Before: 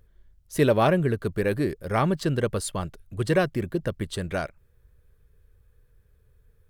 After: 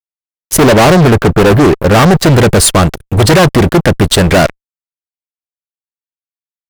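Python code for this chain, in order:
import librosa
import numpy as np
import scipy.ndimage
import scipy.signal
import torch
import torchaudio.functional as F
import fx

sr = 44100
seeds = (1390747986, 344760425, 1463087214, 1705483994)

y = fx.band_shelf(x, sr, hz=5100.0, db=-13.5, octaves=2.8, at=(0.56, 2.22), fade=0.02)
y = fx.fuzz(y, sr, gain_db=35.0, gate_db=-44.0)
y = F.gain(torch.from_numpy(y), 9.0).numpy()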